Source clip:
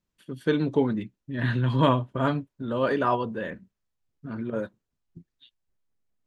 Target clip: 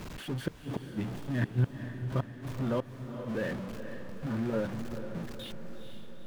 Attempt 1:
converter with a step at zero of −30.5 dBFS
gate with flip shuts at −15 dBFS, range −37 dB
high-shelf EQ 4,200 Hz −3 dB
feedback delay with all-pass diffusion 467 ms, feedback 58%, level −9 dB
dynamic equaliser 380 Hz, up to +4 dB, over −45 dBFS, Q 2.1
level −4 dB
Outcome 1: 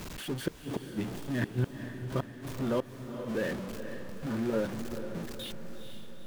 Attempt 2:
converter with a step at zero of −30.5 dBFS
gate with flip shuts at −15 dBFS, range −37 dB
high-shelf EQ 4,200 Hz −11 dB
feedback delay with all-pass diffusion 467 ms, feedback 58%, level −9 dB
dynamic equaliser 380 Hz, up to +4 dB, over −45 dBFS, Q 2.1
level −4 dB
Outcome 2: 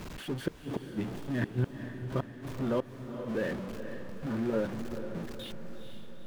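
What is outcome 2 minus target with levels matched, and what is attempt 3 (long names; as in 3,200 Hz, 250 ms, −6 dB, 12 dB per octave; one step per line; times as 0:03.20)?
125 Hz band −3.0 dB
converter with a step at zero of −30.5 dBFS
gate with flip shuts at −15 dBFS, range −37 dB
high-shelf EQ 4,200 Hz −11 dB
feedback delay with all-pass diffusion 467 ms, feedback 58%, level −9 dB
dynamic equaliser 120 Hz, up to +4 dB, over −45 dBFS, Q 2.1
level −4 dB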